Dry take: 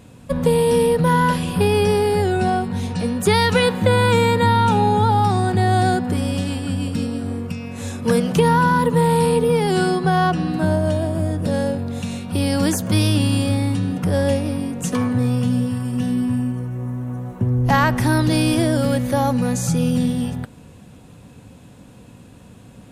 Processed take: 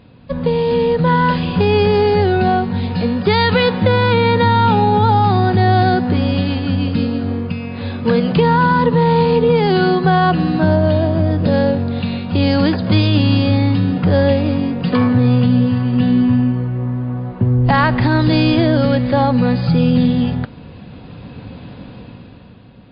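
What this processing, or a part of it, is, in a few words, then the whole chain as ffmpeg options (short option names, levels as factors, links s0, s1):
low-bitrate web radio: -af "dynaudnorm=f=190:g=11:m=4.22,alimiter=limit=0.631:level=0:latency=1:release=76" -ar 11025 -c:a libmp3lame -b:a 32k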